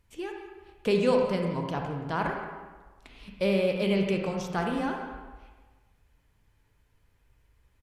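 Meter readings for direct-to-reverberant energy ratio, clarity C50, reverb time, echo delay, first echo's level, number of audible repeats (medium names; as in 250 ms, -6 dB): 1.5 dB, 2.5 dB, 1.4 s, 175 ms, -14.5 dB, 1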